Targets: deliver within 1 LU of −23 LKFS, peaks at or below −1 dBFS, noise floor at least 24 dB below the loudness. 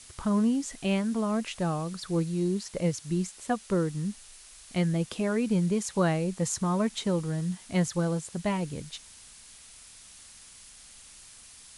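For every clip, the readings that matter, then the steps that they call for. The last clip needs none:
background noise floor −51 dBFS; target noise floor −54 dBFS; integrated loudness −29.5 LKFS; sample peak −13.5 dBFS; target loudness −23.0 LKFS
→ broadband denoise 6 dB, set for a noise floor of −51 dBFS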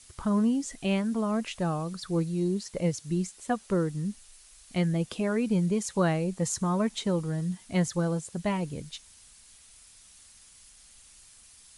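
background noise floor −55 dBFS; integrated loudness −29.5 LKFS; sample peak −13.5 dBFS; target loudness −23.0 LKFS
→ level +6.5 dB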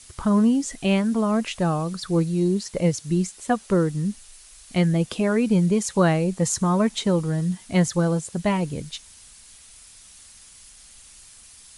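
integrated loudness −23.0 LKFS; sample peak −7.0 dBFS; background noise floor −49 dBFS

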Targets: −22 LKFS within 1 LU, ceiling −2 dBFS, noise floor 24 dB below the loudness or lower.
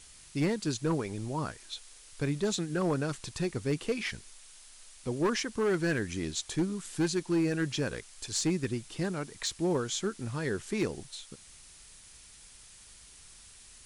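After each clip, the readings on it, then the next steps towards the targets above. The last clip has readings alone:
share of clipped samples 1.0%; peaks flattened at −22.5 dBFS; background noise floor −54 dBFS; target noise floor −57 dBFS; integrated loudness −32.5 LKFS; sample peak −22.5 dBFS; target loudness −22.0 LKFS
→ clipped peaks rebuilt −22.5 dBFS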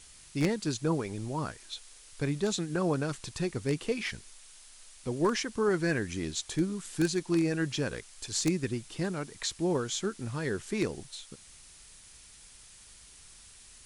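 share of clipped samples 0.0%; background noise floor −54 dBFS; target noise floor −56 dBFS
→ broadband denoise 6 dB, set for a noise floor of −54 dBFS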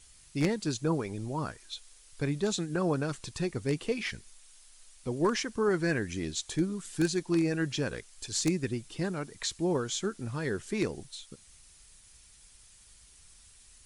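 background noise floor −57 dBFS; integrated loudness −32.0 LKFS; sample peak −13.5 dBFS; target loudness −22.0 LKFS
→ level +10 dB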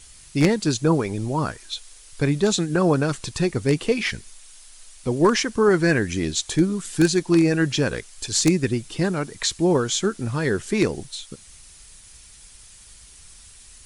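integrated loudness −22.0 LKFS; sample peak −3.5 dBFS; background noise floor −48 dBFS

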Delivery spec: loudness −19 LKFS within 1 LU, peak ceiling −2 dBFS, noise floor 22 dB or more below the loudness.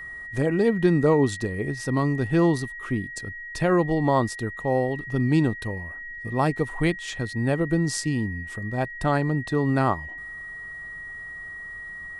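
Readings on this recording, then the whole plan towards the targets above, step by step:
interfering tone 1,900 Hz; level of the tone −35 dBFS; integrated loudness −24.5 LKFS; sample peak −8.0 dBFS; target loudness −19.0 LKFS
→ notch filter 1,900 Hz, Q 30
level +5.5 dB

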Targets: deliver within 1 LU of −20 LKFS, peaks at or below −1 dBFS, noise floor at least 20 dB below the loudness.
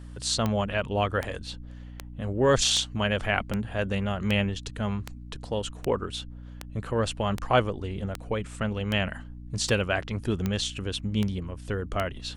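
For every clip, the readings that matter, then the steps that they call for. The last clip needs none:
number of clicks 16; mains hum 60 Hz; hum harmonics up to 300 Hz; level of the hum −39 dBFS; integrated loudness −28.5 LKFS; sample peak −8.0 dBFS; target loudness −20.0 LKFS
→ click removal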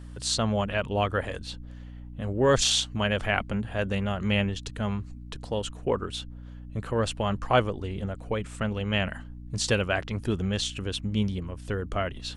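number of clicks 0; mains hum 60 Hz; hum harmonics up to 300 Hz; level of the hum −39 dBFS
→ hum removal 60 Hz, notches 5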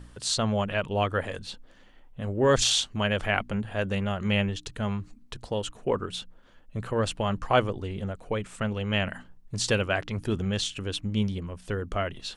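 mains hum none found; integrated loudness −28.5 LKFS; sample peak −7.5 dBFS; target loudness −20.0 LKFS
→ level +8.5 dB
brickwall limiter −1 dBFS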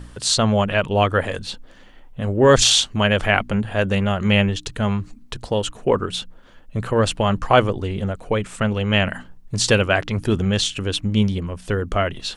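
integrated loudness −20.0 LKFS; sample peak −1.0 dBFS; background noise floor −46 dBFS

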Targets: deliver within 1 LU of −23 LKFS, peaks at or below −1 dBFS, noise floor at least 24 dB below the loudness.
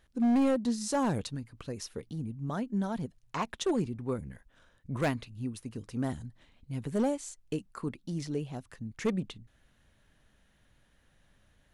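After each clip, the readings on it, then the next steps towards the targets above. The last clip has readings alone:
share of clipped samples 1.2%; peaks flattened at −22.5 dBFS; integrated loudness −33.5 LKFS; sample peak −22.5 dBFS; target loudness −23.0 LKFS
→ clipped peaks rebuilt −22.5 dBFS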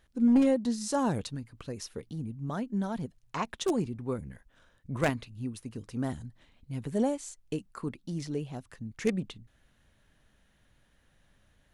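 share of clipped samples 0.0%; integrated loudness −32.5 LKFS; sample peak −13.5 dBFS; target loudness −23.0 LKFS
→ level +9.5 dB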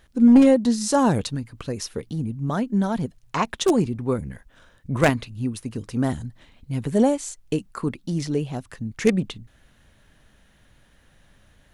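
integrated loudness −23.0 LKFS; sample peak −4.0 dBFS; background noise floor −58 dBFS

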